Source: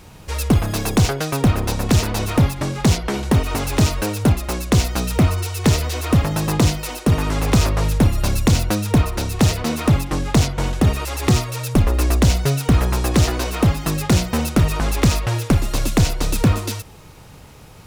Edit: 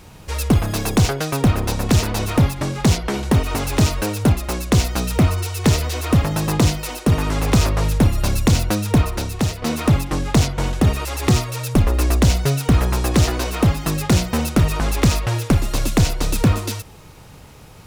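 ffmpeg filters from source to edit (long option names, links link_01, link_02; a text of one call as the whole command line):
ffmpeg -i in.wav -filter_complex "[0:a]asplit=2[link_01][link_02];[link_01]atrim=end=9.62,asetpts=PTS-STARTPTS,afade=type=out:start_time=9.11:duration=0.51:silence=0.354813[link_03];[link_02]atrim=start=9.62,asetpts=PTS-STARTPTS,afade=type=in:duration=0.004:curve=hsin:silence=0.354813[link_04];[link_03][link_04]concat=n=2:v=0:a=1" out.wav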